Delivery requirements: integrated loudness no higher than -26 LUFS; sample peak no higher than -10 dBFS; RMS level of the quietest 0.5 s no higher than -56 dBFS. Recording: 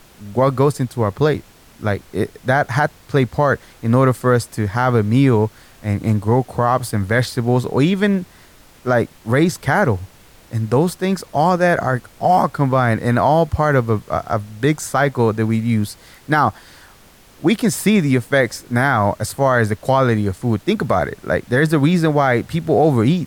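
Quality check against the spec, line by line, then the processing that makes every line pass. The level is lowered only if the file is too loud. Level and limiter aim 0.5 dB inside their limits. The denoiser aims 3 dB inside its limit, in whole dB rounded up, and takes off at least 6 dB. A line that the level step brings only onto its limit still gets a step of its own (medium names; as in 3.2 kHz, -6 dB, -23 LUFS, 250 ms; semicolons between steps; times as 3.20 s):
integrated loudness -17.5 LUFS: fail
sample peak -4.5 dBFS: fail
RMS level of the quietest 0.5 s -47 dBFS: fail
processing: noise reduction 6 dB, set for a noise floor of -47 dBFS; trim -9 dB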